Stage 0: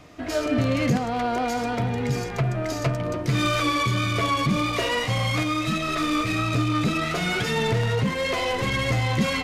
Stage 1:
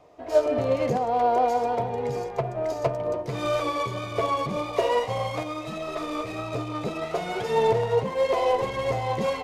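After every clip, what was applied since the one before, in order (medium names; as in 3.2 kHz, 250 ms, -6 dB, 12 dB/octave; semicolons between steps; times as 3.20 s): high-order bell 630 Hz +13 dB; upward expansion 1.5:1, over -26 dBFS; trim -5.5 dB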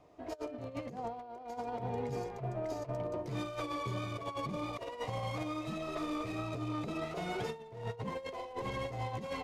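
FFT filter 320 Hz 0 dB, 480 Hz -6 dB, 1.1 kHz -4 dB; compressor with a negative ratio -32 dBFS, ratio -0.5; trim -6 dB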